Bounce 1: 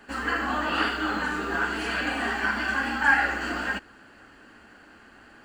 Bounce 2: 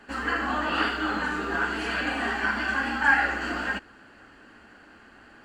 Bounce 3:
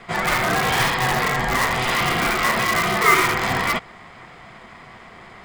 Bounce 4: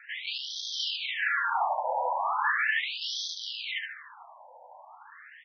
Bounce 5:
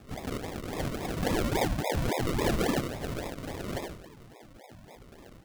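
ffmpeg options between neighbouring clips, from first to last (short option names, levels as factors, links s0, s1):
-af "highshelf=f=9000:g=-7"
-filter_complex "[0:a]aeval=exprs='val(0)*sin(2*PI*440*n/s)':c=same,asplit=2[s0][s1];[s1]aeval=exprs='(mod(15.8*val(0)+1,2)-1)/15.8':c=same,volume=0.668[s2];[s0][s2]amix=inputs=2:normalize=0,volume=2.37"
-af "aecho=1:1:74|148|222|296|370|444:0.398|0.207|0.108|0.056|0.0291|0.0151,afreqshift=-240,afftfilt=real='re*between(b*sr/1024,700*pow(4500/700,0.5+0.5*sin(2*PI*0.38*pts/sr))/1.41,700*pow(4500/700,0.5+0.5*sin(2*PI*0.38*pts/sr))*1.41)':imag='im*between(b*sr/1024,700*pow(4500/700,0.5+0.5*sin(2*PI*0.38*pts/sr))/1.41,700*pow(4500/700,0.5+0.5*sin(2*PI*0.38*pts/sr))*1.41)':win_size=1024:overlap=0.75,volume=0.708"
-af "acrusher=samples=42:mix=1:aa=0.000001:lfo=1:lforange=25.2:lforate=3.6"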